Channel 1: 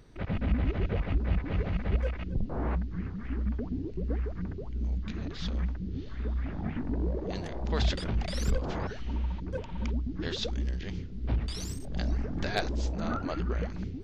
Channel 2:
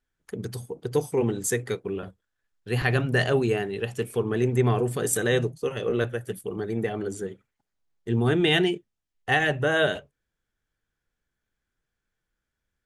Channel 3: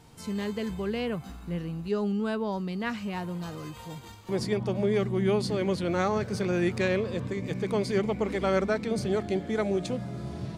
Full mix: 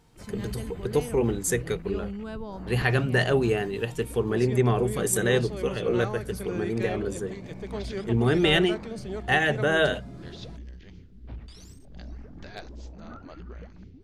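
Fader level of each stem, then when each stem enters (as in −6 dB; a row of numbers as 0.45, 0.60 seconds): −11.0, 0.0, −7.5 decibels; 0.00, 0.00, 0.00 seconds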